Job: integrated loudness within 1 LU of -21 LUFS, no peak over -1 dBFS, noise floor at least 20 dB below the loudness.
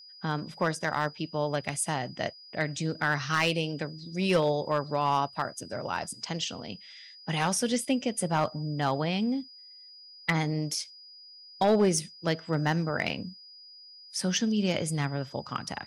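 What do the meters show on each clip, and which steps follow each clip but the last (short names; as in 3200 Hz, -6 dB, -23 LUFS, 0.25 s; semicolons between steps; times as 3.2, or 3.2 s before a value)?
clipped 0.2%; flat tops at -17.0 dBFS; steady tone 4900 Hz; tone level -48 dBFS; loudness -29.5 LUFS; peak -17.0 dBFS; loudness target -21.0 LUFS
-> clip repair -17 dBFS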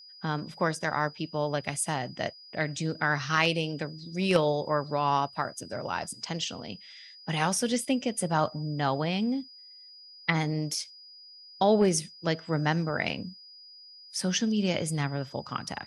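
clipped 0.0%; steady tone 4900 Hz; tone level -48 dBFS
-> notch 4900 Hz, Q 30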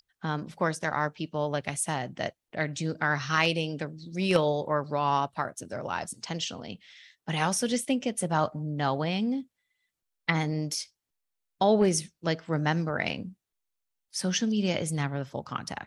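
steady tone none; loudness -29.5 LUFS; peak -8.5 dBFS; loudness target -21.0 LUFS
-> gain +8.5 dB; limiter -1 dBFS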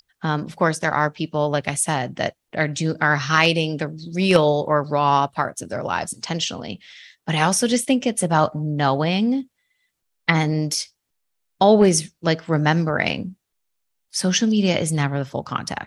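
loudness -21.0 LUFS; peak -1.0 dBFS; noise floor -76 dBFS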